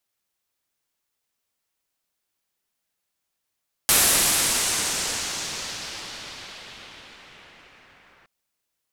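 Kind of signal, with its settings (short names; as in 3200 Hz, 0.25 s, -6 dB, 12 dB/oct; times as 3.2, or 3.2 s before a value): swept filtered noise white, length 4.37 s lowpass, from 12000 Hz, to 1900 Hz, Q 1.3, exponential, gain ramp -33 dB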